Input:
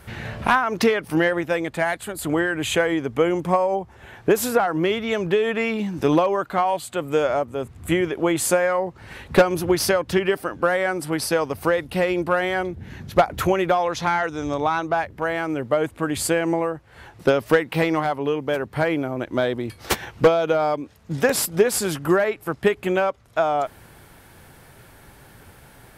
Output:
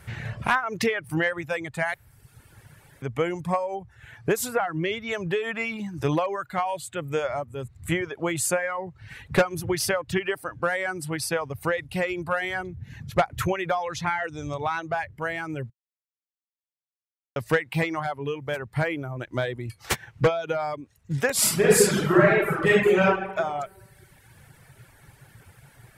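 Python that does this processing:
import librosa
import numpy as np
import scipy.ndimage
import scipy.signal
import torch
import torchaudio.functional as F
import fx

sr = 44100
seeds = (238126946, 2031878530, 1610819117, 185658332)

y = fx.reverb_throw(x, sr, start_s=21.32, length_s=1.75, rt60_s=1.6, drr_db=-8.5)
y = fx.edit(y, sr, fx.room_tone_fill(start_s=1.94, length_s=1.08),
    fx.silence(start_s=15.7, length_s=1.66), tone=tone)
y = fx.graphic_eq(y, sr, hz=(125, 250, 2000, 8000), db=(11, -4, 5, 5))
y = fx.dereverb_blind(y, sr, rt60_s=0.98)
y = y * 10.0 ** (-6.0 / 20.0)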